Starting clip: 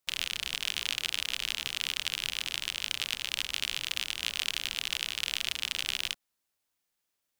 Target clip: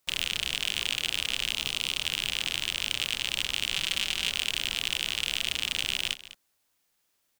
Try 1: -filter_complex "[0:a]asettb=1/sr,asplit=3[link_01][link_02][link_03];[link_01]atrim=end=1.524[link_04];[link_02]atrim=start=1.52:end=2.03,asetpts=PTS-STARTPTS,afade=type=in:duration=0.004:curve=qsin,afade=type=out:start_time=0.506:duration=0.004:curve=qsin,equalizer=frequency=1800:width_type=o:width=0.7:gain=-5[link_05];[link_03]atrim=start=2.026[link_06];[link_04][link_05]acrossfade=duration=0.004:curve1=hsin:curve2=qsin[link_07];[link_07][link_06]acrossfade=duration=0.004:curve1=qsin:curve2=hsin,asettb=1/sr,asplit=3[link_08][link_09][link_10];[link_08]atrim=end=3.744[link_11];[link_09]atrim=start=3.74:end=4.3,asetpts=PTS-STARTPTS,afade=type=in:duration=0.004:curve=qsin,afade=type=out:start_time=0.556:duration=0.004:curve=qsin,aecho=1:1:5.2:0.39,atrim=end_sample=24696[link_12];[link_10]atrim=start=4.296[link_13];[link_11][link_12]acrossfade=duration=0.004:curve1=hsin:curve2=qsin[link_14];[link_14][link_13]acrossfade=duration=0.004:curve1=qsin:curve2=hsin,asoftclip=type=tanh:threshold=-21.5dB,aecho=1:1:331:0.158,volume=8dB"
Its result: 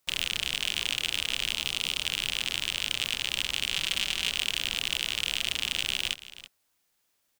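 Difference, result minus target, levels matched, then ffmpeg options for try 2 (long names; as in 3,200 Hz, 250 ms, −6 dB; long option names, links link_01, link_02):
echo 129 ms late
-filter_complex "[0:a]asettb=1/sr,asplit=3[link_01][link_02][link_03];[link_01]atrim=end=1.524[link_04];[link_02]atrim=start=1.52:end=2.03,asetpts=PTS-STARTPTS,afade=type=in:duration=0.004:curve=qsin,afade=type=out:start_time=0.506:duration=0.004:curve=qsin,equalizer=frequency=1800:width_type=o:width=0.7:gain=-5[link_05];[link_03]atrim=start=2.026[link_06];[link_04][link_05]acrossfade=duration=0.004:curve1=hsin:curve2=qsin[link_07];[link_07][link_06]acrossfade=duration=0.004:curve1=qsin:curve2=hsin,asettb=1/sr,asplit=3[link_08][link_09][link_10];[link_08]atrim=end=3.744[link_11];[link_09]atrim=start=3.74:end=4.3,asetpts=PTS-STARTPTS,afade=type=in:duration=0.004:curve=qsin,afade=type=out:start_time=0.556:duration=0.004:curve=qsin,aecho=1:1:5.2:0.39,atrim=end_sample=24696[link_12];[link_10]atrim=start=4.296[link_13];[link_11][link_12]acrossfade=duration=0.004:curve1=hsin:curve2=qsin[link_14];[link_14][link_13]acrossfade=duration=0.004:curve1=qsin:curve2=hsin,asoftclip=type=tanh:threshold=-21.5dB,aecho=1:1:202:0.158,volume=8dB"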